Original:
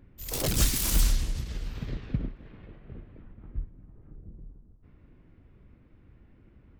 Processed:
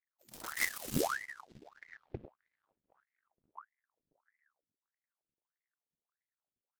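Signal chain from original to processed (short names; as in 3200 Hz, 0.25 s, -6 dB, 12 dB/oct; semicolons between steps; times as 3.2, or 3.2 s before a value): power-law curve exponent 2; ring modulator with a swept carrier 1100 Hz, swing 85%, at 1.6 Hz; gain -3.5 dB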